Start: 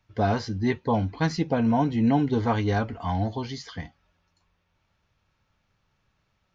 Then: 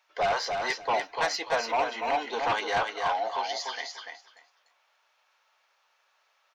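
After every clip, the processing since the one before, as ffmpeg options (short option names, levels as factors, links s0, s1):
-filter_complex "[0:a]highpass=f=610:w=0.5412,highpass=f=610:w=1.3066,asplit=2[s0][s1];[s1]aeval=exprs='0.188*sin(PI/2*3.16*val(0)/0.188)':c=same,volume=0.668[s2];[s0][s2]amix=inputs=2:normalize=0,aecho=1:1:293|586|879:0.562|0.0956|0.0163,volume=0.447"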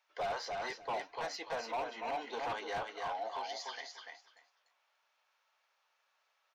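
-filter_complex "[0:a]flanger=delay=1.2:depth=4.3:regen=-89:speed=1.6:shape=triangular,acrossover=split=670[s0][s1];[s1]alimiter=level_in=1.78:limit=0.0631:level=0:latency=1:release=306,volume=0.562[s2];[s0][s2]amix=inputs=2:normalize=0,volume=25.1,asoftclip=hard,volume=0.0398,volume=0.668"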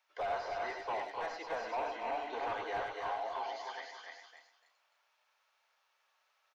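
-filter_complex "[0:a]equalizer=f=170:t=o:w=0.76:g=-9.5,asplit=2[s0][s1];[s1]aecho=0:1:89|99|260:0.316|0.422|0.355[s2];[s0][s2]amix=inputs=2:normalize=0,acrossover=split=2800[s3][s4];[s4]acompressor=threshold=0.00126:ratio=4:attack=1:release=60[s5];[s3][s5]amix=inputs=2:normalize=0"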